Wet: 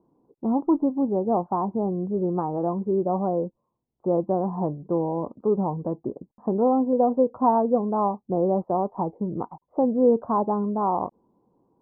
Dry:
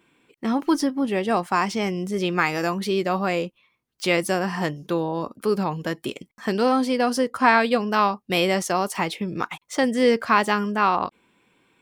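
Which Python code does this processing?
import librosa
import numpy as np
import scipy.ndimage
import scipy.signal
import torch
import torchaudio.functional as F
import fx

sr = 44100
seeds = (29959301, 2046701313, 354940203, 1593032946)

y = scipy.signal.sosfilt(scipy.signal.butter(8, 970.0, 'lowpass', fs=sr, output='sos'), x)
y = fx.dynamic_eq(y, sr, hz=580.0, q=3.0, threshold_db=-35.0, ratio=4.0, max_db=5, at=(6.92, 7.36))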